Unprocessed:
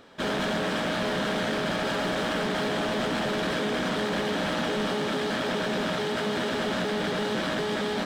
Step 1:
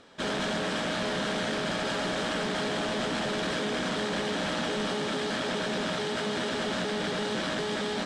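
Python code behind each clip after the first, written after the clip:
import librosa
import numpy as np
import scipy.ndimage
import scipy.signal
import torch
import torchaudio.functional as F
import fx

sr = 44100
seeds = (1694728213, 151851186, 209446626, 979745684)

y = scipy.signal.sosfilt(scipy.signal.butter(4, 9300.0, 'lowpass', fs=sr, output='sos'), x)
y = fx.high_shelf(y, sr, hz=4600.0, db=7.0)
y = y * librosa.db_to_amplitude(-3.0)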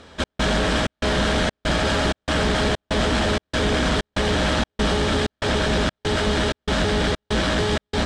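y = fx.octave_divider(x, sr, octaves=2, level_db=2.0)
y = fx.step_gate(y, sr, bpm=191, pattern='xxx..xxx', floor_db=-60.0, edge_ms=4.5)
y = y * librosa.db_to_amplitude(8.5)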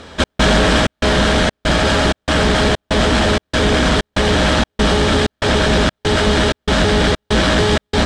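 y = fx.rider(x, sr, range_db=4, speed_s=2.0)
y = y * librosa.db_to_amplitude(6.5)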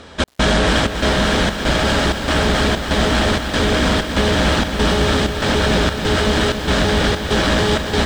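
y = fx.echo_crushed(x, sr, ms=277, feedback_pct=80, bits=6, wet_db=-9.0)
y = y * librosa.db_to_amplitude(-2.5)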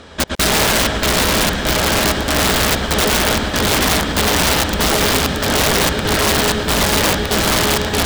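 y = x + 10.0 ** (-5.5 / 20.0) * np.pad(x, (int(112 * sr / 1000.0), 0))[:len(x)]
y = (np.mod(10.0 ** (9.0 / 20.0) * y + 1.0, 2.0) - 1.0) / 10.0 ** (9.0 / 20.0)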